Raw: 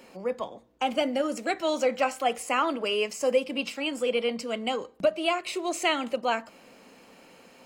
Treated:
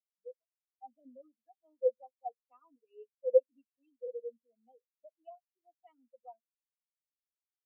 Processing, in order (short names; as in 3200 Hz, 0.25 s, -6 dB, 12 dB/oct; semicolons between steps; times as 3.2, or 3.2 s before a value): comb 4.1 ms, depth 47%; spectral expander 4:1; gain -3 dB